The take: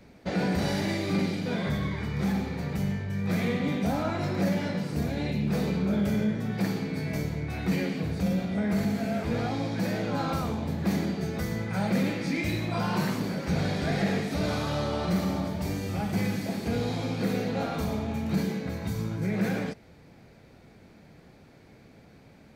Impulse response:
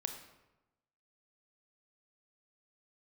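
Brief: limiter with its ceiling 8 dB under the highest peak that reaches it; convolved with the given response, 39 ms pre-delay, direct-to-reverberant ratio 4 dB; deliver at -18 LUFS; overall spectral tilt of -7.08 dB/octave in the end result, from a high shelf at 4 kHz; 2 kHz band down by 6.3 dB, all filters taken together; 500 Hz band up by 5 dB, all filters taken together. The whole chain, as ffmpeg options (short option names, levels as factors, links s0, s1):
-filter_complex "[0:a]equalizer=f=500:t=o:g=6.5,equalizer=f=2000:t=o:g=-7.5,highshelf=f=4000:g=-3.5,alimiter=limit=0.0841:level=0:latency=1,asplit=2[s0][s1];[1:a]atrim=start_sample=2205,adelay=39[s2];[s1][s2]afir=irnorm=-1:irlink=0,volume=0.631[s3];[s0][s3]amix=inputs=2:normalize=0,volume=3.55"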